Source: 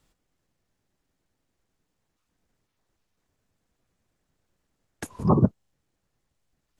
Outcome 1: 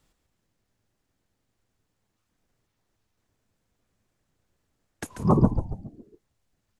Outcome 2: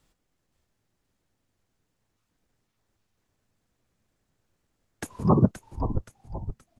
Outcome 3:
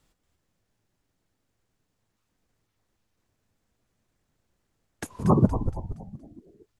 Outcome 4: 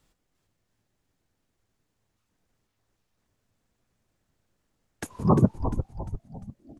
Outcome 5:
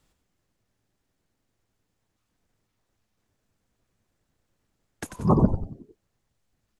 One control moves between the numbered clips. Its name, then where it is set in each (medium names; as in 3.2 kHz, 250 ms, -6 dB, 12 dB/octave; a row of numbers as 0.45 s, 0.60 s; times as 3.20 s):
frequency-shifting echo, time: 139 ms, 524 ms, 234 ms, 349 ms, 92 ms